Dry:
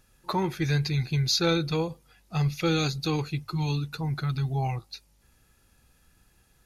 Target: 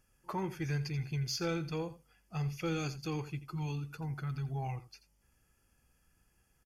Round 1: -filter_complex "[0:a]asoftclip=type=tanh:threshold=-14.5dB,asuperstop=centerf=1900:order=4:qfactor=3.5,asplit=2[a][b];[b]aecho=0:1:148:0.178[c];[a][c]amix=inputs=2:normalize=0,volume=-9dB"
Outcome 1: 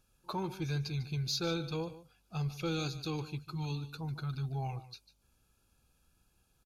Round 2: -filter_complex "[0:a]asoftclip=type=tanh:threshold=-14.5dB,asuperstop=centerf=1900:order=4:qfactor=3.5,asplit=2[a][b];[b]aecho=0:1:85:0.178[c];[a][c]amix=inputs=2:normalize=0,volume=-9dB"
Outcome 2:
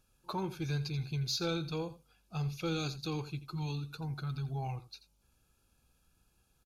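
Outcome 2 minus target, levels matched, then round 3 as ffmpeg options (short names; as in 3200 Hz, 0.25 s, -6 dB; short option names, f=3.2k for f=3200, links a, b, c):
4000 Hz band +4.0 dB
-filter_complex "[0:a]asoftclip=type=tanh:threshold=-14.5dB,asuperstop=centerf=3900:order=4:qfactor=3.5,asplit=2[a][b];[b]aecho=0:1:85:0.178[c];[a][c]amix=inputs=2:normalize=0,volume=-9dB"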